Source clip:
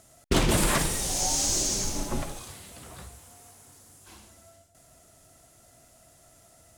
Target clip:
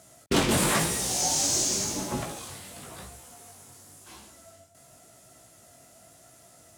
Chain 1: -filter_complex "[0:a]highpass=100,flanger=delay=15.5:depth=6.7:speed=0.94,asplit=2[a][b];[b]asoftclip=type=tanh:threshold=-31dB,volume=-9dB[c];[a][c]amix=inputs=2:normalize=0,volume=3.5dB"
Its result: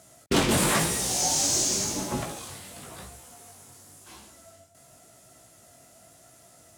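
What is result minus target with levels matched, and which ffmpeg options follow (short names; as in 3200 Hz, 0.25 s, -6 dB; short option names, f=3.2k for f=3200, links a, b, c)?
soft clip: distortion -6 dB
-filter_complex "[0:a]highpass=100,flanger=delay=15.5:depth=6.7:speed=0.94,asplit=2[a][b];[b]asoftclip=type=tanh:threshold=-41.5dB,volume=-9dB[c];[a][c]amix=inputs=2:normalize=0,volume=3.5dB"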